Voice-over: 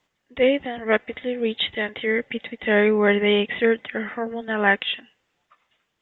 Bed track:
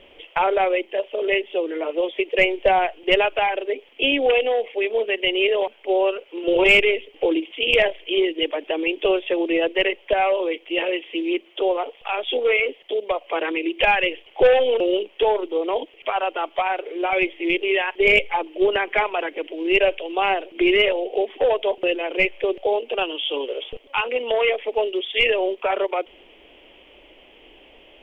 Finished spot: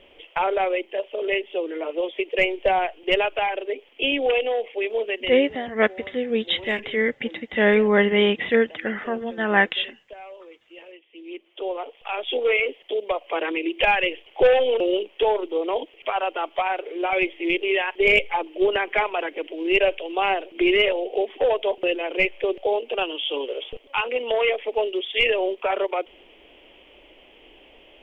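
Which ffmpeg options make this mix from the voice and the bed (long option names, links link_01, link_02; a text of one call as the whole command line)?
ffmpeg -i stem1.wav -i stem2.wav -filter_complex "[0:a]adelay=4900,volume=0.5dB[link_01];[1:a]volume=17dB,afade=type=out:start_time=5.08:duration=0.39:silence=0.11885,afade=type=in:start_time=11.11:duration=1.31:silence=0.1[link_02];[link_01][link_02]amix=inputs=2:normalize=0" out.wav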